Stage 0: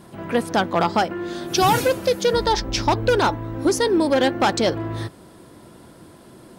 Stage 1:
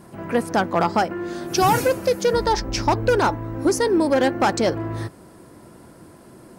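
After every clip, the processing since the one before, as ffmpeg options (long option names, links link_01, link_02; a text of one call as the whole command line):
ffmpeg -i in.wav -af "equalizer=frequency=3500:width_type=o:width=0.57:gain=-8" out.wav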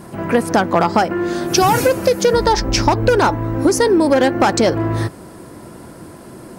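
ffmpeg -i in.wav -af "acompressor=threshold=-19dB:ratio=6,volume=9dB" out.wav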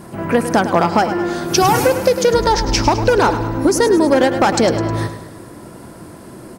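ffmpeg -i in.wav -af "aecho=1:1:104|208|312|416|520|624:0.282|0.152|0.0822|0.0444|0.024|0.0129" out.wav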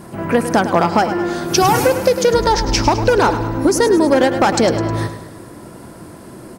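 ffmpeg -i in.wav -af anull out.wav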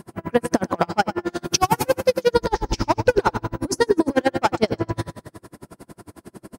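ffmpeg -i in.wav -af "aeval=exprs='val(0)*pow(10,-37*(0.5-0.5*cos(2*PI*11*n/s))/20)':channel_layout=same" out.wav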